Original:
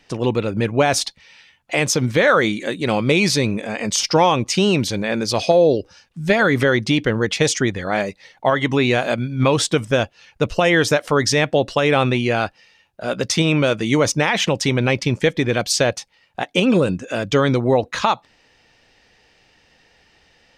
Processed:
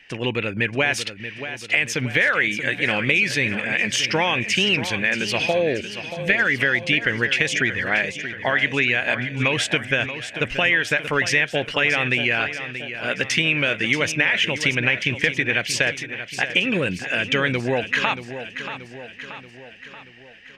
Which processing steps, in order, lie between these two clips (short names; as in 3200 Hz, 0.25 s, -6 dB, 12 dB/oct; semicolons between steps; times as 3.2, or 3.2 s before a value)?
band shelf 2200 Hz +15 dB 1.2 oct; compressor 4:1, threshold -11 dBFS, peak gain reduction 9.5 dB; on a send: feedback echo 0.631 s, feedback 55%, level -11 dB; on the sum: gain -5.5 dB